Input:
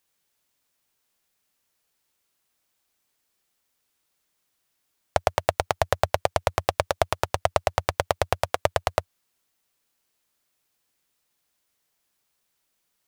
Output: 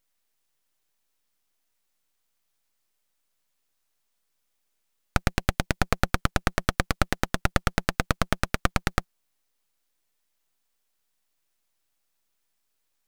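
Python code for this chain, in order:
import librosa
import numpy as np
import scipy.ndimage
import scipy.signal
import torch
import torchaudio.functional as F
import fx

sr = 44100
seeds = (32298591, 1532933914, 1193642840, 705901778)

y = np.abs(x)
y = fx.peak_eq(y, sr, hz=1300.0, db=-7.0, octaves=0.38, at=(5.26, 5.8))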